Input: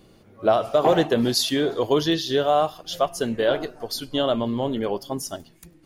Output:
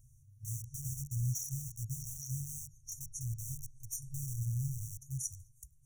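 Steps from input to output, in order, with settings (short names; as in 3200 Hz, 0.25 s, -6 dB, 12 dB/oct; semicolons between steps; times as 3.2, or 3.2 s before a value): treble ducked by the level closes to 2900 Hz, closed at -16 dBFS; dynamic EQ 390 Hz, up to +4 dB, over -35 dBFS, Q 2.1; in parallel at -10 dB: bit-crush 4-bit; on the sum: FFT band-reject 140–5600 Hz; gain -2.5 dB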